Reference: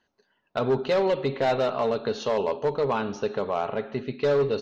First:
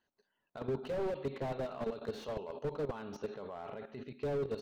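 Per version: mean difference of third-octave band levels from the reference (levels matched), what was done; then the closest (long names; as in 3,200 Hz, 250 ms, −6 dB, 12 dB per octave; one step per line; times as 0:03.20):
3.5 dB: brickwall limiter −19 dBFS, peak gain reduction 3.5 dB
output level in coarse steps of 13 dB
slew-rate limiting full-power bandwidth 20 Hz
level −5 dB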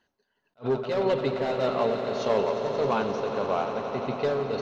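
5.0 dB: amplitude tremolo 1.7 Hz, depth 59%
on a send: echo that builds up and dies away 88 ms, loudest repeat 5, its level −12 dB
on the sum: level that may rise only so fast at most 380 dB per second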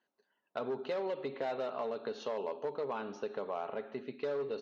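2.5 dB: downward compressor, threshold −24 dBFS, peak gain reduction 5.5 dB
high-pass filter 240 Hz 12 dB per octave
high-shelf EQ 4,000 Hz −7.5 dB
level −8 dB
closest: third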